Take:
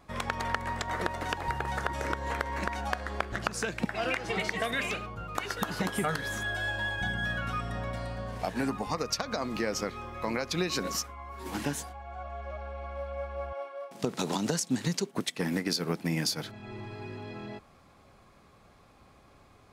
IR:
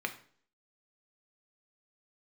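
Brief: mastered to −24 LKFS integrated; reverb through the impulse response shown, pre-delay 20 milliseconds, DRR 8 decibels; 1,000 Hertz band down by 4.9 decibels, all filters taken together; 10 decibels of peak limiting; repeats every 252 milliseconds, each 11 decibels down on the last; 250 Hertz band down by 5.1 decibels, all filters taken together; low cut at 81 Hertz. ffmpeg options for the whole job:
-filter_complex "[0:a]highpass=81,equalizer=frequency=250:width_type=o:gain=-6.5,equalizer=frequency=1000:width_type=o:gain=-6,alimiter=level_in=0.5dB:limit=-24dB:level=0:latency=1,volume=-0.5dB,aecho=1:1:252|504|756:0.282|0.0789|0.0221,asplit=2[link_01][link_02];[1:a]atrim=start_sample=2205,adelay=20[link_03];[link_02][link_03]afir=irnorm=-1:irlink=0,volume=-12.5dB[link_04];[link_01][link_04]amix=inputs=2:normalize=0,volume=12.5dB"

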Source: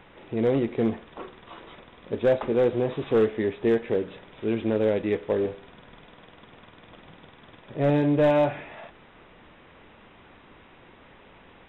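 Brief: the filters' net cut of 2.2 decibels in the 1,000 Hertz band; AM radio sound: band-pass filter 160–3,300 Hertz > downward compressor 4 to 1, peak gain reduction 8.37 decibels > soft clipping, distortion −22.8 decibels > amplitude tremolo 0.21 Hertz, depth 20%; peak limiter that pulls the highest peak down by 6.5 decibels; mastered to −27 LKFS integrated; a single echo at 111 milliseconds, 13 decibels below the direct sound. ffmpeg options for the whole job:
ffmpeg -i in.wav -af "equalizer=frequency=1000:width_type=o:gain=-3,alimiter=limit=-20.5dB:level=0:latency=1,highpass=160,lowpass=3300,aecho=1:1:111:0.224,acompressor=threshold=-32dB:ratio=4,asoftclip=threshold=-25.5dB,tremolo=f=0.21:d=0.2,volume=12dB" out.wav

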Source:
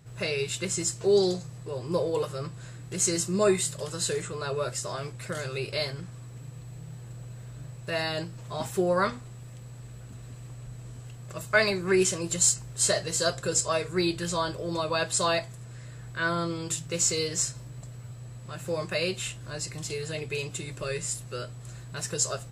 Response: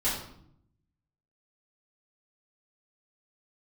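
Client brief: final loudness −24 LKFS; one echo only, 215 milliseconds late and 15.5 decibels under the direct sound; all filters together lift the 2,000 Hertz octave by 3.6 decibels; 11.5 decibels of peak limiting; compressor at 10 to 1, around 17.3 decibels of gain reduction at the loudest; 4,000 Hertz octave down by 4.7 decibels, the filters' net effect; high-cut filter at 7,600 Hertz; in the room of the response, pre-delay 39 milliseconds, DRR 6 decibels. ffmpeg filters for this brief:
-filter_complex "[0:a]lowpass=7600,equalizer=frequency=2000:width_type=o:gain=6.5,equalizer=frequency=4000:width_type=o:gain=-7,acompressor=threshold=-32dB:ratio=10,alimiter=level_in=7dB:limit=-24dB:level=0:latency=1,volume=-7dB,aecho=1:1:215:0.168,asplit=2[link_01][link_02];[1:a]atrim=start_sample=2205,adelay=39[link_03];[link_02][link_03]afir=irnorm=-1:irlink=0,volume=-15dB[link_04];[link_01][link_04]amix=inputs=2:normalize=0,volume=15dB"

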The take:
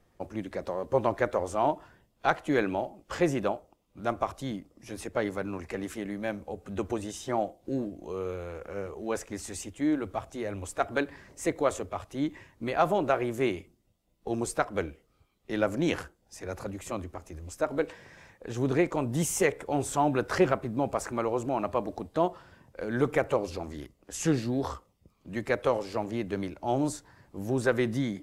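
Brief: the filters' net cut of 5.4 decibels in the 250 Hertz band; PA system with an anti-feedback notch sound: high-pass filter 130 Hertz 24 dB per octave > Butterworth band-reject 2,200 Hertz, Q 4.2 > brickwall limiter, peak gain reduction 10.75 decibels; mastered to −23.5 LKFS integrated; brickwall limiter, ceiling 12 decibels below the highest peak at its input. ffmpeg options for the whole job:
ffmpeg -i in.wav -af "equalizer=frequency=250:width_type=o:gain=-7.5,alimiter=limit=-21dB:level=0:latency=1,highpass=frequency=130:width=0.5412,highpass=frequency=130:width=1.3066,asuperstop=centerf=2200:order=8:qfactor=4.2,volume=17.5dB,alimiter=limit=-12.5dB:level=0:latency=1" out.wav

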